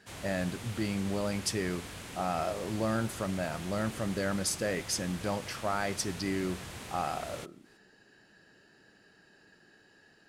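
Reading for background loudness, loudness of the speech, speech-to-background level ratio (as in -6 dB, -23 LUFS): -43.5 LUFS, -34.0 LUFS, 9.5 dB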